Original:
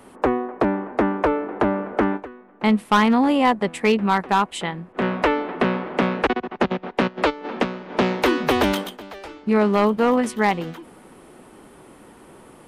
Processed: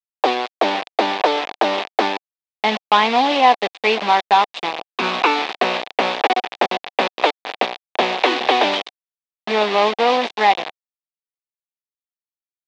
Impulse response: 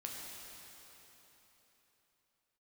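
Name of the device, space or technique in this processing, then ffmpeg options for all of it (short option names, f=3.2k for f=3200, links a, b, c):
hand-held game console: -filter_complex "[0:a]asettb=1/sr,asplit=3[a][b][c];[a]atrim=end=4.544[d];[b]atrim=start=4.54:end=5.55,asetpts=PTS-STARTPTS,afade=t=in:d=0.004:c=qsin,afade=t=out:st=1.006:d=0.004:c=qsin,aecho=1:1:0.8:0.87,atrim=end_sample=44541[e];[c]atrim=start=5.546[f];[d][e]acrossfade=d=0.004:c1=hsin:c2=qsin[g];[g][f]acrossfade=d=0.004:c1=qsin:c2=hsin,acrusher=bits=3:mix=0:aa=0.000001,highpass=460,equalizer=f=750:t=q:w=4:g=7,equalizer=f=1.4k:t=q:w=4:g=-6,equalizer=f=2.5k:t=q:w=4:g=3,equalizer=f=3.6k:t=q:w=4:g=5,lowpass=f=4.5k:w=0.5412,lowpass=f=4.5k:w=1.3066,volume=3dB"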